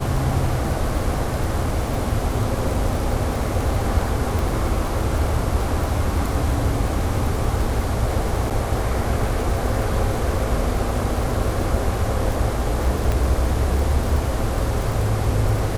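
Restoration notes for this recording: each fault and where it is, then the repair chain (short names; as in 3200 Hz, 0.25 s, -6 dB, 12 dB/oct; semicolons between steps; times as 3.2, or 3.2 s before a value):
crackle 57/s -26 dBFS
4.39 pop
8.5–8.51 gap 6.9 ms
13.12 pop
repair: de-click; interpolate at 8.5, 6.9 ms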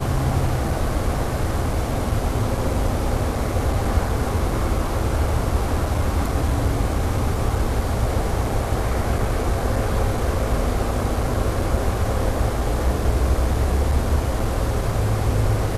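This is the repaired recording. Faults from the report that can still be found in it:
none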